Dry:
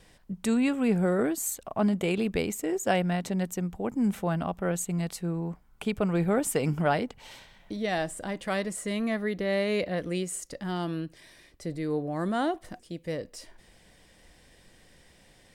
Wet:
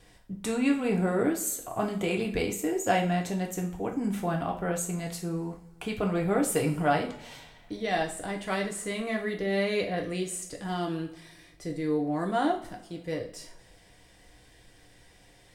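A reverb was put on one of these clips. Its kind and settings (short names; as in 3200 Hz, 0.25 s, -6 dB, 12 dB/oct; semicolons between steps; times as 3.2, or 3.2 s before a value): two-slope reverb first 0.39 s, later 1.5 s, from -19 dB, DRR 0.5 dB; gain -2 dB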